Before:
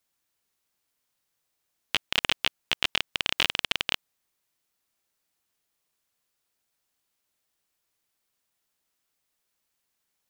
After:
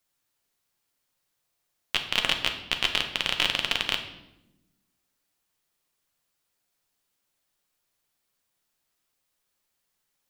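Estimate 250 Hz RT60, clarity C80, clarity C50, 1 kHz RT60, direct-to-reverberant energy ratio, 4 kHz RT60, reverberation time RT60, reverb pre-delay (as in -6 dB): 1.5 s, 11.5 dB, 9.0 dB, 0.80 s, 4.0 dB, 0.70 s, 0.95 s, 6 ms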